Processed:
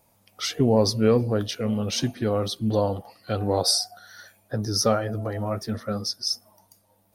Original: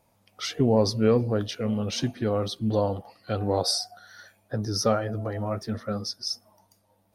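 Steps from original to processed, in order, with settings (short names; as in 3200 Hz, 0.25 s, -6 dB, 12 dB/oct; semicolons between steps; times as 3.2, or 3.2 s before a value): high shelf 7800 Hz +9.5 dB; gain +1.5 dB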